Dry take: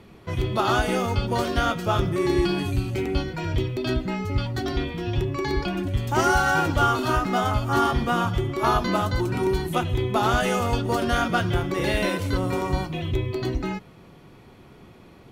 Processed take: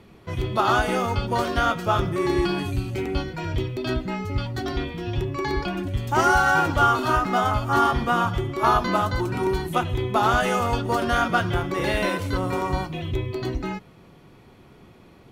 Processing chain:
dynamic equaliser 1,100 Hz, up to +5 dB, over −34 dBFS, Q 0.82
level −1.5 dB

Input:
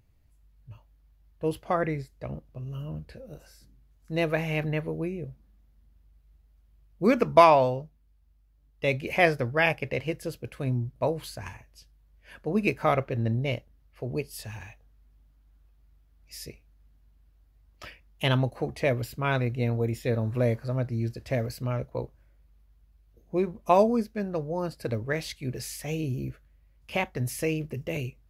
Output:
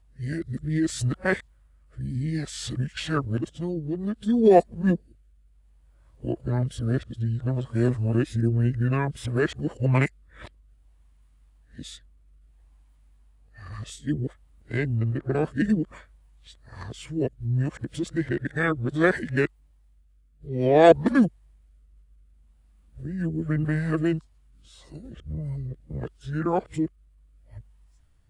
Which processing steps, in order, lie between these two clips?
played backwards from end to start
rotating-speaker cabinet horn 0.6 Hz
formants moved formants −6 semitones
level +5 dB

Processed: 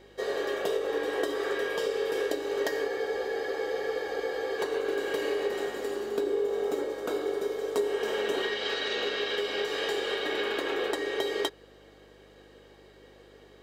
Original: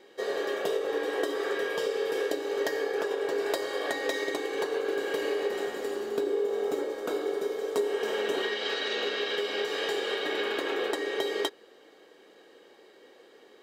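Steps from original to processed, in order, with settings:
hum with harmonics 50 Hz, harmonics 13, −60 dBFS −3 dB per octave
frozen spectrum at 0:02.91, 1.68 s

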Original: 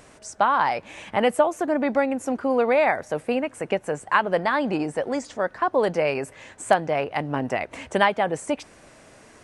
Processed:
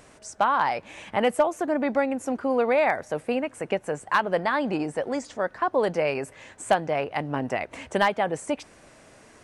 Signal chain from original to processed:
hard clipping −10 dBFS, distortion −24 dB
level −2 dB

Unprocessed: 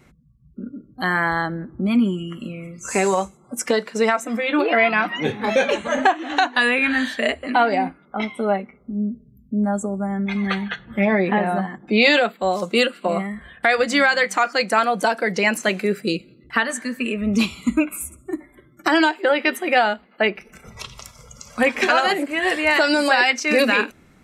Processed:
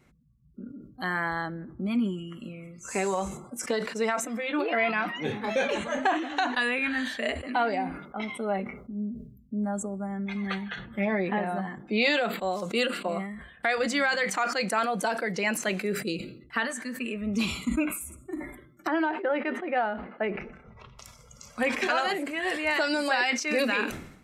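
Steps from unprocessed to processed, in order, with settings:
0:18.87–0:20.99: low-pass filter 1,600 Hz 12 dB per octave
level that may fall only so fast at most 75 dB per second
level −9 dB

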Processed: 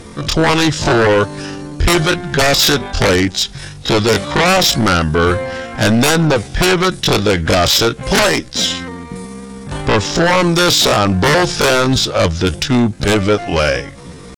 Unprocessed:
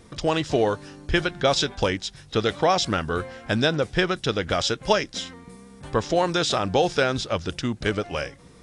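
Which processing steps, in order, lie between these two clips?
sine wavefolder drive 16 dB, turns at −4 dBFS
tempo change 0.6×
level −3.5 dB

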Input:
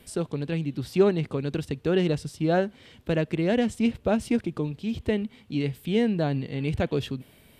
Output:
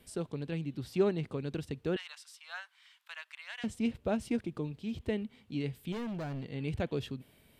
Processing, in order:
0:01.96–0:03.64: Butterworth high-pass 1,000 Hz 36 dB per octave
0:05.92–0:06.50: hard clipping −27.5 dBFS, distortion −12 dB
level −8 dB

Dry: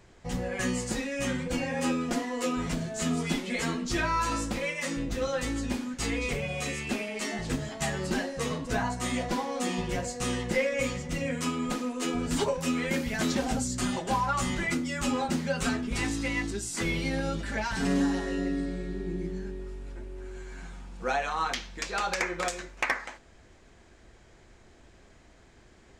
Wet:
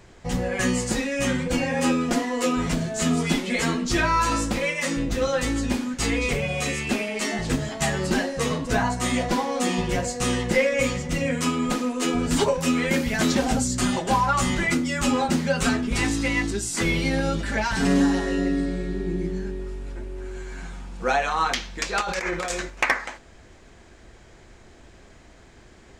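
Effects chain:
0:22.01–0:22.70: compressor whose output falls as the input rises −34 dBFS, ratio −1
level +6.5 dB

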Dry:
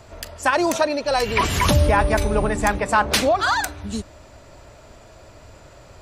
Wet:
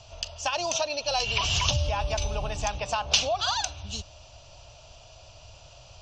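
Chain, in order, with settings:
downward compressor, threshold −18 dBFS, peak gain reduction 6.5 dB
drawn EQ curve 130 Hz 0 dB, 220 Hz −14 dB, 380 Hz −14 dB, 700 Hz +1 dB, 1,200 Hz −5 dB, 2,000 Hz −12 dB, 2,800 Hz +11 dB, 4,000 Hz +5 dB, 6,100 Hz +10 dB, 10,000 Hz −25 dB
level −4 dB

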